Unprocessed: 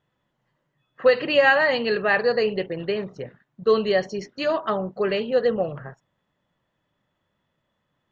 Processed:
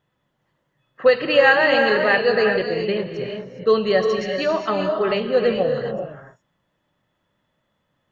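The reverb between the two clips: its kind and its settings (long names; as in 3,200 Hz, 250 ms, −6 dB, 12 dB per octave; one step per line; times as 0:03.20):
reverb whose tail is shaped and stops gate 440 ms rising, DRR 3.5 dB
level +2 dB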